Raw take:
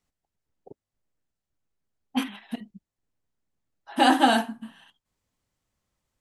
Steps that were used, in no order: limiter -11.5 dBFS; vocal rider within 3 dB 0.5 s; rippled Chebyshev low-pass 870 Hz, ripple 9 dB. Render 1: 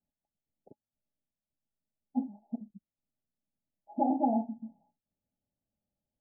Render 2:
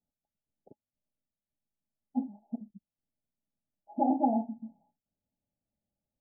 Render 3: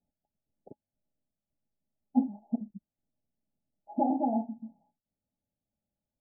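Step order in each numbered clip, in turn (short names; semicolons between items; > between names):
vocal rider > limiter > rippled Chebyshev low-pass; vocal rider > rippled Chebyshev low-pass > limiter; limiter > vocal rider > rippled Chebyshev low-pass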